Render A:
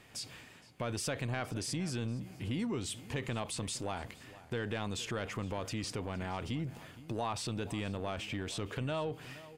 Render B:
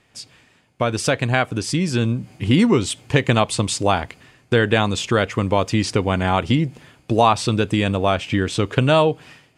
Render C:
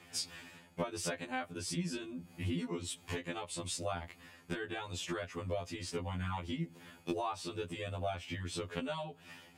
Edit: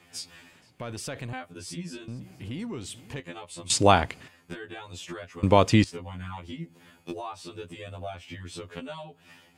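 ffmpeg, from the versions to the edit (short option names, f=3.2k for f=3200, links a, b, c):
-filter_complex "[0:a]asplit=2[a][b];[1:a]asplit=2[c][d];[2:a]asplit=5[e][f][g][h][i];[e]atrim=end=0.532[j];[a]atrim=start=0.528:end=1.332[k];[f]atrim=start=1.328:end=2.082[l];[b]atrim=start=2.078:end=3.202[m];[g]atrim=start=3.198:end=3.702[n];[c]atrim=start=3.698:end=4.282[o];[h]atrim=start=4.278:end=5.432[p];[d]atrim=start=5.428:end=5.842[q];[i]atrim=start=5.838[r];[j][k]acrossfade=d=0.004:c1=hsin:c2=hsin[s];[s][l]acrossfade=d=0.004:c1=hsin:c2=hsin[t];[t][m]acrossfade=d=0.004:c1=hsin:c2=hsin[u];[u][n]acrossfade=d=0.004:c1=hsin:c2=hsin[v];[v][o]acrossfade=d=0.004:c1=hsin:c2=hsin[w];[w][p]acrossfade=d=0.004:c1=hsin:c2=hsin[x];[x][q]acrossfade=d=0.004:c1=hsin:c2=hsin[y];[y][r]acrossfade=d=0.004:c1=hsin:c2=hsin"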